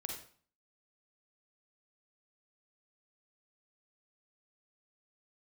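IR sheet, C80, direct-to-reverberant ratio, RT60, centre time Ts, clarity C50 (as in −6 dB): 8.0 dB, 1.0 dB, 0.45 s, 33 ms, 3.0 dB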